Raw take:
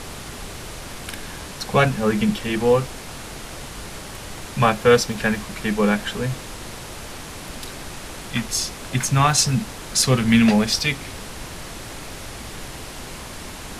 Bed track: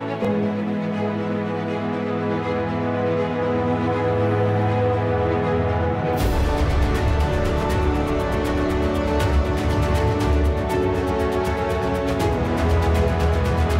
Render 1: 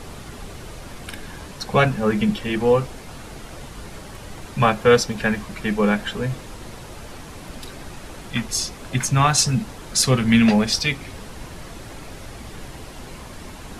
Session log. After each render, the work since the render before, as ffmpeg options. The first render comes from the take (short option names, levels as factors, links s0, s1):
-af "afftdn=nr=7:nf=-36"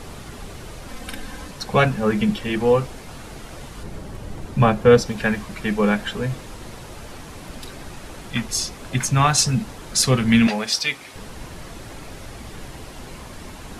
-filter_complex "[0:a]asettb=1/sr,asplit=3[s0][s1][s2];[s0]atrim=end=0.884[s3];[s1]atrim=start=0.88:end=1.51,asetpts=PTS-STARTPTS,afade=t=in:d=0.004:c=qsin,afade=t=out:st=0.626:d=0.004:c=qsin,aecho=1:1:3.9:0.65,atrim=end_sample=27783[s4];[s2]atrim=start=1.506[s5];[s3][s4]acrossfade=d=0.004:c1=hsin:c2=qsin[s6];[s6][s5]acrossfade=d=0.004:c1=qsin:c2=hsin,asettb=1/sr,asplit=3[s7][s8][s9];[s7]atrim=end=3.834[s10];[s8]atrim=start=3.83:end=5.06,asetpts=PTS-STARTPTS,afade=t=in:d=0.004:c=qsin,afade=t=out:st=1.226:d=0.004:c=qsin,tiltshelf=f=720:g=5[s11];[s9]atrim=start=5.056[s12];[s10][s11]acrossfade=d=0.004:c1=hsin:c2=qsin[s13];[s13][s12]acrossfade=d=0.004:c1=qsin:c2=hsin,asettb=1/sr,asplit=3[s14][s15][s16];[s14]atrim=end=10.474[s17];[s15]atrim=start=10.47:end=11.16,asetpts=PTS-STARTPTS,afade=t=in:d=0.004:c=qsin,afade=t=out:st=0.686:d=0.004:c=qsin,highpass=f=660:p=1[s18];[s16]atrim=start=11.156[s19];[s17][s18]acrossfade=d=0.004:c1=hsin:c2=qsin[s20];[s20][s19]acrossfade=d=0.004:c1=qsin:c2=hsin"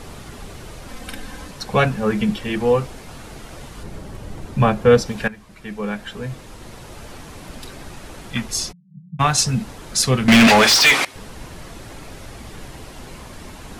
-filter_complex "[0:a]asplit=3[s0][s1][s2];[s0]afade=t=out:st=8.71:d=0.02[s3];[s1]asuperpass=centerf=170:order=8:qfactor=4.1,afade=t=in:st=8.71:d=0.02,afade=t=out:st=9.19:d=0.02[s4];[s2]afade=t=in:st=9.19:d=0.02[s5];[s3][s4][s5]amix=inputs=3:normalize=0,asettb=1/sr,asplit=3[s6][s7][s8];[s6]atrim=end=10.284[s9];[s7]atrim=start=10.28:end=11.05,asetpts=PTS-STARTPTS,afade=t=in:d=0.004:c=qsin,afade=t=out:st=0.766:d=0.004:c=qsin,asplit=2[s10][s11];[s11]highpass=f=720:p=1,volume=39.8,asoftclip=type=tanh:threshold=0.668[s12];[s10][s12]amix=inputs=2:normalize=0,lowpass=f=4300:p=1,volume=0.501[s13];[s8]atrim=start=11.046[s14];[s9][s13]acrossfade=d=0.004:c1=hsin:c2=qsin[s15];[s15][s14]acrossfade=d=0.004:c1=qsin:c2=hsin,asplit=2[s16][s17];[s16]atrim=end=5.28,asetpts=PTS-STARTPTS,afade=t=out:st=5.276:d=0.004:c=hsin:silence=0.149624[s18];[s17]atrim=start=5.28,asetpts=PTS-STARTPTS,afade=t=in:d=1.75:silence=0.149624[s19];[s18][s19]concat=n=2:v=0:a=1"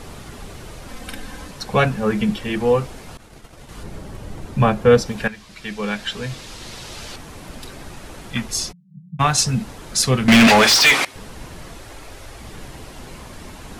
-filter_complex "[0:a]asettb=1/sr,asplit=3[s0][s1][s2];[s0]atrim=end=3.174[s3];[s1]atrim=start=3.17:end=3.69,asetpts=PTS-STARTPTS,afade=t=in:d=0.004:c=qsin,afade=t=out:st=0.516:d=0.004:c=qsin,agate=range=0.0224:threshold=0.0282:ratio=3:release=100:detection=peak[s4];[s2]atrim=start=3.686[s5];[s3][s4]acrossfade=d=0.004:c1=hsin:c2=qsin[s6];[s6][s5]acrossfade=d=0.004:c1=qsin:c2=hsin,asettb=1/sr,asplit=3[s7][s8][s9];[s7]atrim=end=5.284[s10];[s8]atrim=start=5.28:end=7.16,asetpts=PTS-STARTPTS,afade=t=in:d=0.004:c=qsin,afade=t=out:st=1.876:d=0.004:c=qsin,equalizer=f=4400:w=0.57:g=11.5[s11];[s9]atrim=start=7.156[s12];[s10][s11]acrossfade=d=0.004:c1=hsin:c2=qsin[s13];[s13][s12]acrossfade=d=0.004:c1=qsin:c2=hsin,asettb=1/sr,asplit=3[s14][s15][s16];[s14]atrim=end=11.754[s17];[s15]atrim=start=11.75:end=12.42,asetpts=PTS-STARTPTS,afade=t=in:d=0.004:c=qsin,afade=t=out:st=0.666:d=0.004:c=qsin,equalizer=f=180:w=1.4:g=-10.5[s18];[s16]atrim=start=12.416[s19];[s17][s18]acrossfade=d=0.004:c1=hsin:c2=qsin[s20];[s20][s19]acrossfade=d=0.004:c1=qsin:c2=hsin"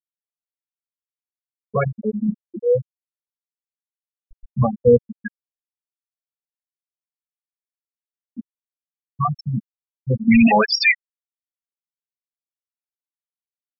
-af "afftfilt=real='re*gte(hypot(re,im),0.794)':imag='im*gte(hypot(re,im),0.794)':win_size=1024:overlap=0.75"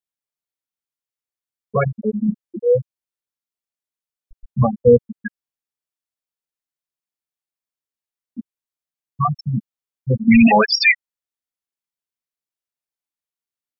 -af "volume=1.26,alimiter=limit=0.794:level=0:latency=1"